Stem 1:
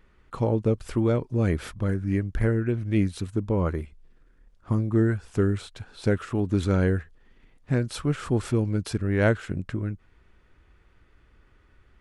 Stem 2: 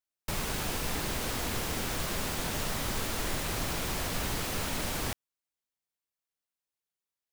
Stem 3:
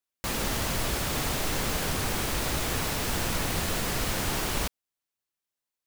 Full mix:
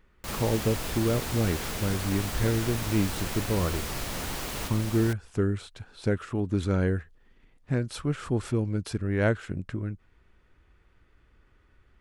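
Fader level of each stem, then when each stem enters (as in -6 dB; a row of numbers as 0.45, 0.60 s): -3.0, -4.5, -7.0 dB; 0.00, 0.00, 0.00 s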